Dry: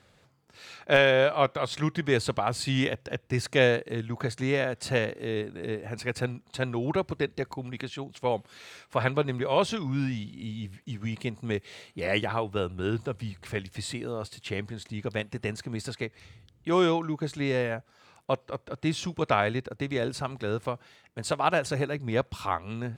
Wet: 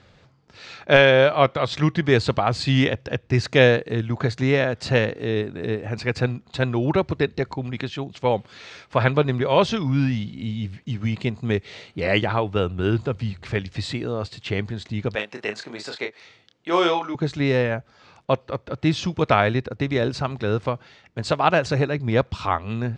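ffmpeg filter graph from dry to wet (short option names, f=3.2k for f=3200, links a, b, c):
-filter_complex "[0:a]asettb=1/sr,asplit=3[a][b][c];[a]atrim=end=15.154[d];[b]atrim=start=15.15:end=17.15,asetpts=PTS-STARTPTS,afade=t=in:d=0.004:c=qsin,afade=t=out:st=1.996:d=0.004:c=qsin,highpass=440,asplit=2[e][f];[f]adelay=29,volume=-6dB[g];[e][g]amix=inputs=2:normalize=0,atrim=end_sample=88200[h];[c]atrim=start=17.146[i];[d][h]acrossfade=d=0.004:c1=hsin:c2=qsin[j];[j][i]acrossfade=d=0.004:c1=qsin:c2=hsin,lowpass=f=6.1k:w=0.5412,lowpass=f=6.1k:w=1.3066,lowshelf=f=170:g=4.5,volume=6dB"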